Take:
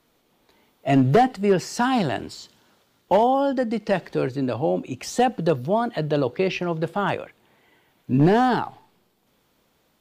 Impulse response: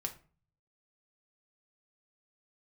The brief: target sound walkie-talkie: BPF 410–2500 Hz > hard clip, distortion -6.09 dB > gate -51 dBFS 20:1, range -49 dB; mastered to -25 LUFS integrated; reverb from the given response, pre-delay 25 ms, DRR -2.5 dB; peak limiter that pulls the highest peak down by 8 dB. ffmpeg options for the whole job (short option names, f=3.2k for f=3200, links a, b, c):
-filter_complex "[0:a]alimiter=limit=-18dB:level=0:latency=1,asplit=2[a][b];[1:a]atrim=start_sample=2205,adelay=25[c];[b][c]afir=irnorm=-1:irlink=0,volume=2.5dB[d];[a][d]amix=inputs=2:normalize=0,highpass=410,lowpass=2.5k,asoftclip=type=hard:threshold=-27dB,agate=range=-49dB:threshold=-51dB:ratio=20,volume=6.5dB"